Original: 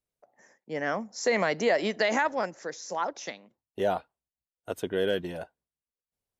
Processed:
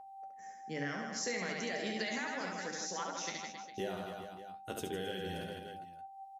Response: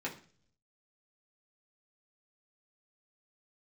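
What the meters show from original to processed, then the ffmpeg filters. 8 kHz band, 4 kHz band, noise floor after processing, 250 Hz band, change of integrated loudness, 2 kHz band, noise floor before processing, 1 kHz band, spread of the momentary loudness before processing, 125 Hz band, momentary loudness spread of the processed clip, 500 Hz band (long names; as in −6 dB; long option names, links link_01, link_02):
−1.0 dB, −4.5 dB, −52 dBFS, −7.0 dB, −10.5 dB, −8.0 dB, below −85 dBFS, −9.0 dB, 15 LU, −4.0 dB, 12 LU, −12.5 dB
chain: -filter_complex "[0:a]equalizer=frequency=730:width_type=o:width=1.7:gain=-13.5,asplit=2[link_01][link_02];[link_02]aecho=0:1:70|157.5|266.9|403.6|574.5:0.631|0.398|0.251|0.158|0.1[link_03];[link_01][link_03]amix=inputs=2:normalize=0,acompressor=threshold=-38dB:ratio=4,aeval=exprs='val(0)+0.00355*sin(2*PI*780*n/s)':channel_layout=same,flanger=delay=9.8:depth=6.6:regen=54:speed=0.36:shape=sinusoidal,bandreject=frequency=50:width_type=h:width=6,bandreject=frequency=100:width_type=h:width=6,bandreject=frequency=150:width_type=h:width=6,bandreject=frequency=200:width_type=h:width=6,bandreject=frequency=250:width_type=h:width=6,bandreject=frequency=300:width_type=h:width=6,bandreject=frequency=350:width_type=h:width=6,volume=6dB"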